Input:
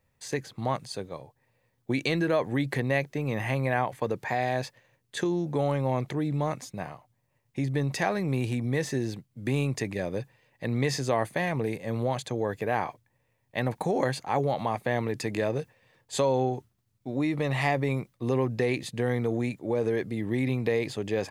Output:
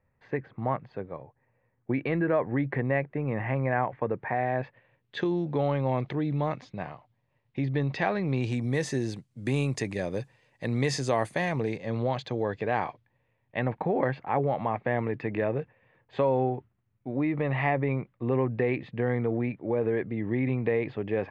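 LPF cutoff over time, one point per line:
LPF 24 dB/oct
4.55 s 2100 Hz
5.19 s 3900 Hz
8.22 s 3900 Hz
8.68 s 9900 Hz
11.32 s 9900 Hz
12.03 s 4500 Hz
12.73 s 4500 Hz
13.89 s 2500 Hz

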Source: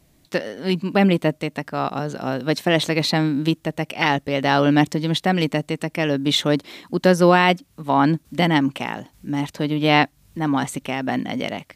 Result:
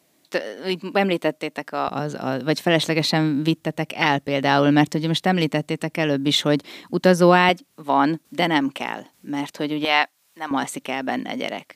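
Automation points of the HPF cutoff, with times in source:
300 Hz
from 1.88 s 100 Hz
from 7.49 s 260 Hz
from 9.85 s 740 Hz
from 10.51 s 260 Hz

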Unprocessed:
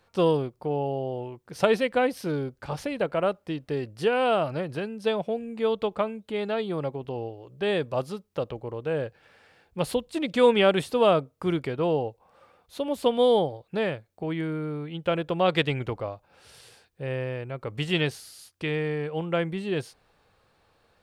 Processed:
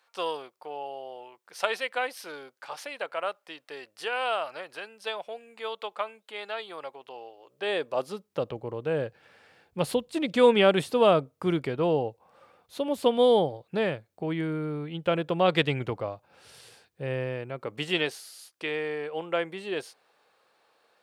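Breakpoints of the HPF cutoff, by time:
7.26 s 870 Hz
8.09 s 280 Hz
8.5 s 100 Hz
17.19 s 100 Hz
18.17 s 400 Hz

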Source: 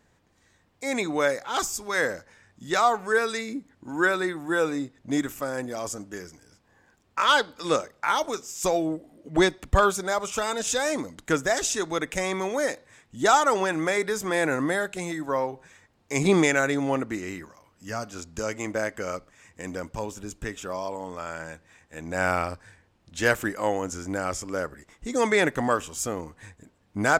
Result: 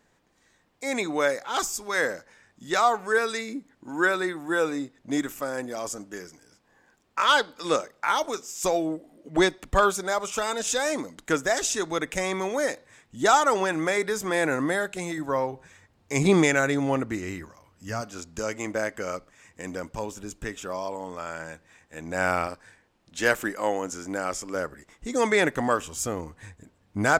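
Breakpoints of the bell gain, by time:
bell 78 Hz 1.5 oct
-10 dB
from 11.68 s -2 dB
from 15.18 s +6.5 dB
from 18.01 s -3.5 dB
from 22.47 s -12.5 dB
from 24.55 s -3 dB
from 25.85 s +3.5 dB

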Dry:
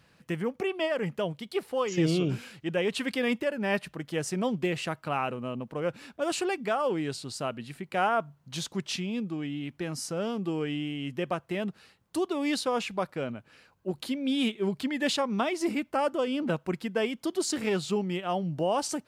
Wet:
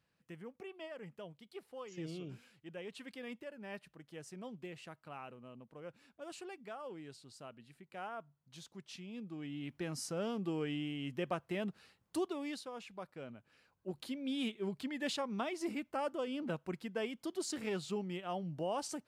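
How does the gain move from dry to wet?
8.86 s -18.5 dB
9.71 s -6.5 dB
12.19 s -6.5 dB
12.71 s -18.5 dB
13.88 s -10 dB

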